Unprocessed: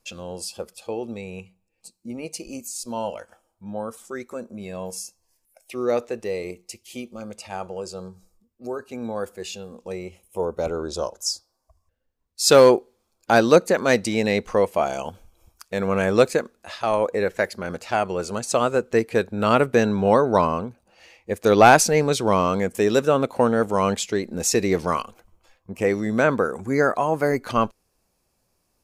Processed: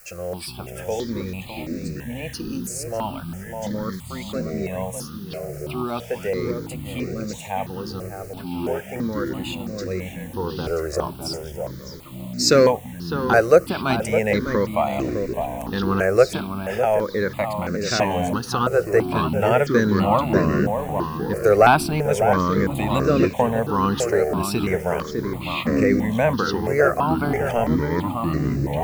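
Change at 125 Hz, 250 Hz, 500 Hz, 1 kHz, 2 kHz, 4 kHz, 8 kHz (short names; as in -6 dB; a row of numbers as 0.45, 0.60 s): +6.0, +3.0, 0.0, 0.0, +0.5, 0.0, -4.0 dB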